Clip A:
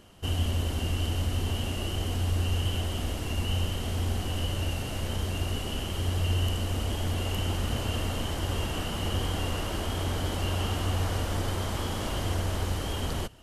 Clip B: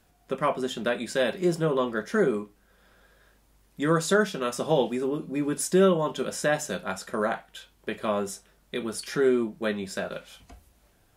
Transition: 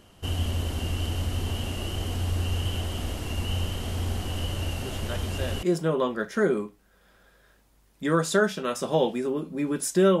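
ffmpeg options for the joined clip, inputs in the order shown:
ffmpeg -i cue0.wav -i cue1.wav -filter_complex "[1:a]asplit=2[link_01][link_02];[0:a]apad=whole_dur=10.2,atrim=end=10.2,atrim=end=5.632[link_03];[link_02]atrim=start=1.398:end=5.97[link_04];[link_01]atrim=start=0.58:end=1.4,asetpts=PTS-STARTPTS,volume=-10.5dB,afade=type=in:duration=0.004:curve=hsin,afade=type=out:start_time=0.816:duration=0.004:curve=hsin,adelay=212121S[link_05];[link_03][link_04]acrossfade=duration=0.004:curve1=hsin:curve2=hsin[link_06];[link_06][link_05]amix=inputs=2:normalize=0" out.wav

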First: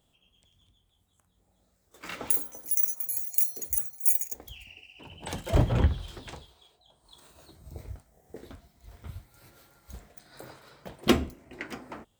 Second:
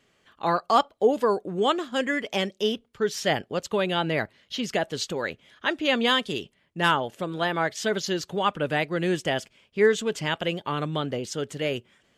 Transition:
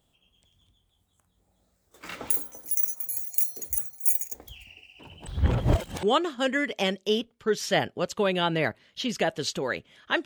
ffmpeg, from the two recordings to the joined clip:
ffmpeg -i cue0.wav -i cue1.wav -filter_complex "[0:a]apad=whole_dur=10.25,atrim=end=10.25,asplit=2[link_01][link_02];[link_01]atrim=end=5.272[link_03];[link_02]atrim=start=5.268:end=6.032,asetpts=PTS-STARTPTS,areverse[link_04];[1:a]atrim=start=1.568:end=5.79[link_05];[link_03][link_04]acrossfade=duration=0.004:curve1=hsin:curve2=hsin[link_06];[link_06][link_05]acrossfade=duration=0.004:curve1=hsin:curve2=hsin" out.wav

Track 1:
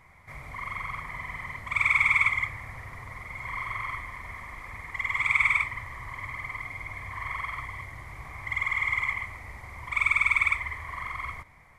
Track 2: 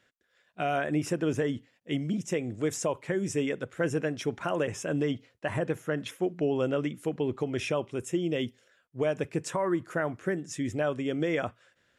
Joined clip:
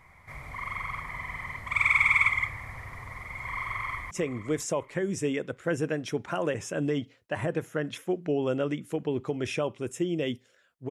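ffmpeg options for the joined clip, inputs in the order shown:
ffmpeg -i cue0.wav -i cue1.wav -filter_complex "[0:a]apad=whole_dur=10.9,atrim=end=10.9,atrim=end=4.112[link_01];[1:a]atrim=start=2.238:end=9.03[link_02];[link_01][link_02]acrossfade=duration=0.004:curve1=hsin:curve2=hsin,asplit=2[link_03][link_04];[link_04]afade=type=in:start_time=3.63:duration=0.01,afade=type=out:start_time=4.11:duration=0.01,aecho=0:1:520|1040|1560:0.188365|0.0470912|0.0117728[link_05];[link_03][link_05]amix=inputs=2:normalize=0" out.wav

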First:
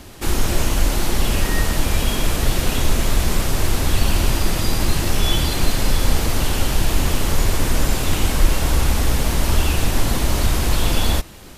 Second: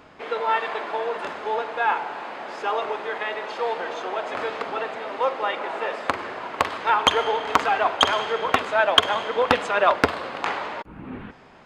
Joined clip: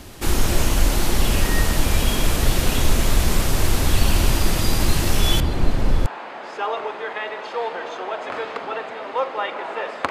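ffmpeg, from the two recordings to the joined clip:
ffmpeg -i cue0.wav -i cue1.wav -filter_complex "[0:a]asettb=1/sr,asplit=3[link_01][link_02][link_03];[link_01]atrim=end=5.404[link_04];[link_02]atrim=start=5.4:end=6.06,asetpts=PTS-STARTPTS,afade=type=in:duration=0.004:curve=qsin,afade=type=out:start_time=0.656:duration=0.004:curve=qsin,lowpass=frequency=1000:poles=1[link_05];[link_03]atrim=start=6.056[link_06];[link_04][link_05]acrossfade=duration=0.004:curve1=hsin:curve2=qsin[link_07];[link_07][link_06]acrossfade=duration=0.004:curve1=qsin:curve2=hsin,apad=whole_dur=10.1,atrim=end=10.1,atrim=end=6.062[link_08];[1:a]atrim=start=2.108:end=6.15[link_09];[link_08][link_09]acrossfade=duration=0.004:curve1=hsin:curve2=hsin" out.wav

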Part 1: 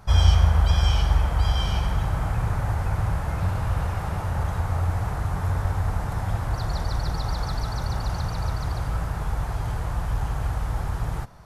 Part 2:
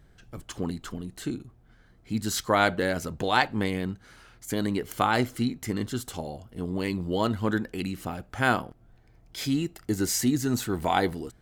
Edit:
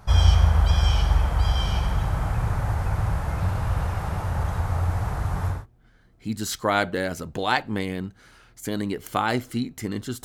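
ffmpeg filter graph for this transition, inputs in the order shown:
ffmpeg -i cue0.wav -i cue1.wav -filter_complex "[0:a]apad=whole_dur=10.24,atrim=end=10.24,atrim=end=5.66,asetpts=PTS-STARTPTS[link_01];[1:a]atrim=start=1.31:end=6.09,asetpts=PTS-STARTPTS[link_02];[link_01][link_02]acrossfade=duration=0.2:curve1=tri:curve2=tri" out.wav

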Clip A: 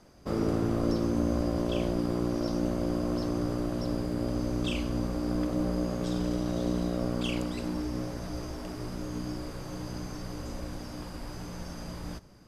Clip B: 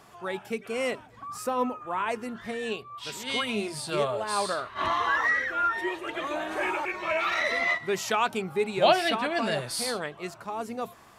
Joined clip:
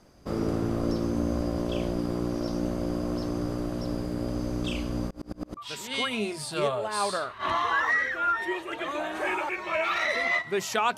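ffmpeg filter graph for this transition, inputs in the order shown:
ffmpeg -i cue0.wav -i cue1.wav -filter_complex "[0:a]asplit=3[link_01][link_02][link_03];[link_01]afade=type=out:start_time=5.08:duration=0.02[link_04];[link_02]aeval=exprs='val(0)*pow(10,-34*if(lt(mod(-9.2*n/s,1),2*abs(-9.2)/1000),1-mod(-9.2*n/s,1)/(2*abs(-9.2)/1000),(mod(-9.2*n/s,1)-2*abs(-9.2)/1000)/(1-2*abs(-9.2)/1000))/20)':channel_layout=same,afade=type=in:start_time=5.08:duration=0.02,afade=type=out:start_time=5.57:duration=0.02[link_05];[link_03]afade=type=in:start_time=5.57:duration=0.02[link_06];[link_04][link_05][link_06]amix=inputs=3:normalize=0,apad=whole_dur=10.97,atrim=end=10.97,atrim=end=5.572[link_07];[1:a]atrim=start=2.928:end=8.33[link_08];[link_07][link_08]acrossfade=duration=0.004:curve1=hsin:curve2=hsin" out.wav

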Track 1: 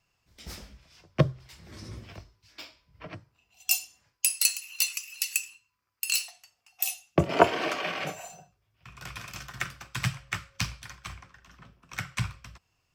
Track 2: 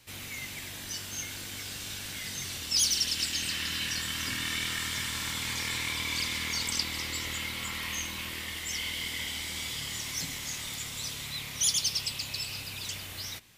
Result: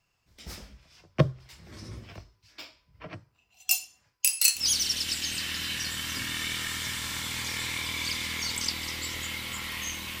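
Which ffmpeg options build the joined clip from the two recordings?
ffmpeg -i cue0.wav -i cue1.wav -filter_complex "[0:a]asettb=1/sr,asplit=3[link_01][link_02][link_03];[link_01]atrim=end=4.174[link_04];[link_02]atrim=start=4.17:end=4.65,asetpts=PTS-STARTPTS,afade=type=in:duration=0.004:curve=qsin,afade=type=out:start_time=0.476:duration=0.004:curve=qsin,asplit=2[link_05][link_06];[link_06]adelay=29,volume=-2.5dB[link_07];[link_05][link_07]amix=inputs=2:normalize=0,atrim=end_sample=21168[link_08];[link_03]atrim=start=4.646[link_09];[link_04][link_08]acrossfade=duration=0.004:curve1=hsin:curve2=qsin[link_10];[link_10][link_09]acrossfade=duration=0.004:curve1=qsin:curve2=hsin,apad=whole_dur=10.2,atrim=end=10.2,atrim=end=4.65,asetpts=PTS-STARTPTS[link_11];[1:a]atrim=start=2.64:end=8.31,asetpts=PTS-STARTPTS[link_12];[link_11][link_12]acrossfade=duration=0.12:curve1=tri:curve2=tri" out.wav

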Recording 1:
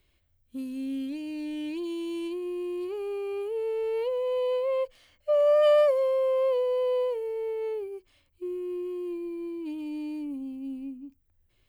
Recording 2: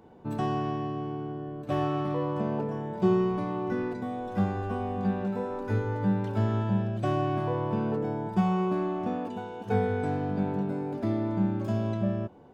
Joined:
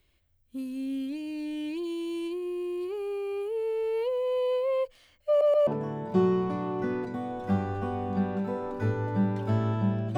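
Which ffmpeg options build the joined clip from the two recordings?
ffmpeg -i cue0.wav -i cue1.wav -filter_complex "[0:a]apad=whole_dur=10.17,atrim=end=10.17,asplit=3[link_01][link_02][link_03];[link_01]atrim=end=5.412[link_04];[link_02]atrim=start=5.278:end=5.412[link_05];[link_03]atrim=start=5.278:end=5.412[link_06];[1:a]atrim=start=2.548:end=7.05[link_07];[link_04][link_05]acrossfade=duration=0.004:curve1=hsin:curve2=hsin[link_08];[link_08][link_06]acrossfade=duration=0.004:curve1=hsin:curve2=hsin[link_09];[link_09][link_07]acrossfade=duration=0.004:curve1=hsin:curve2=hsin" out.wav

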